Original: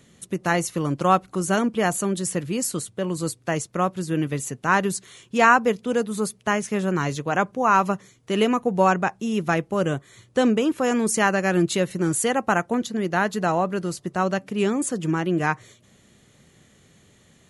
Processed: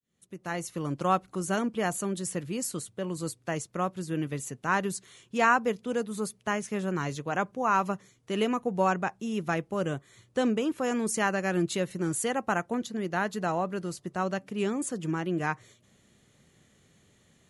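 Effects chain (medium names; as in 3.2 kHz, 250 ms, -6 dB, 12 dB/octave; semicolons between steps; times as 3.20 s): fade-in on the opening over 0.92 s; trim -7 dB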